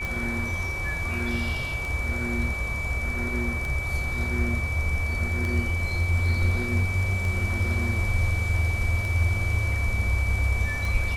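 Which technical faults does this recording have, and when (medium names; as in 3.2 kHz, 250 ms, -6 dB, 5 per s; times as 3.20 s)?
tick 33 1/3 rpm
whine 2.3 kHz -30 dBFS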